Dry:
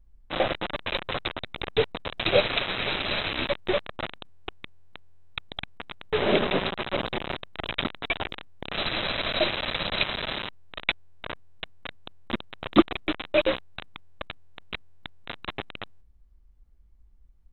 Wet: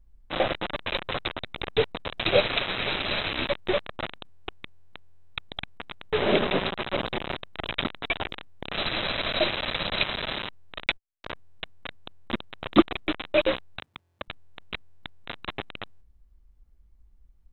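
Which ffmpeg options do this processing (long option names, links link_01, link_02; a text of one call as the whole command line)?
ffmpeg -i in.wav -filter_complex "[0:a]asettb=1/sr,asplit=3[link_01][link_02][link_03];[link_01]atrim=end=10.864[link_04];[link_02]atrim=start=10.86:end=11.32,asetpts=PTS-STARTPTS,afade=type=in:duration=0.004:curve=qsin,afade=type=out:start_time=0.456:duration=0.004:curve=qsin,agate=range=-45dB:threshold=-40dB:ratio=16:release=100:detection=peak[link_05];[link_03]atrim=start=11.316[link_06];[link_04][link_05]acrossfade=duration=0.004:curve1=hsin:curve2=qsin[link_07];[link_07][link_06]acrossfade=duration=0.004:curve1=qsin:curve2=hsin,asettb=1/sr,asplit=3[link_08][link_09][link_10];[link_08]atrim=end=13.794[link_11];[link_09]atrim=start=13.79:end=14.28,asetpts=PTS-STARTPTS,afade=type=in:duration=0.004:curve=qsin,afade=type=out:start_time=0.486:duration=0.004:curve=qsin,highpass=76[link_12];[link_10]atrim=start=14.276[link_13];[link_11][link_12]acrossfade=duration=0.004:curve1=hsin:curve2=qsin[link_14];[link_14][link_13]acrossfade=duration=0.004:curve1=qsin:curve2=hsin" out.wav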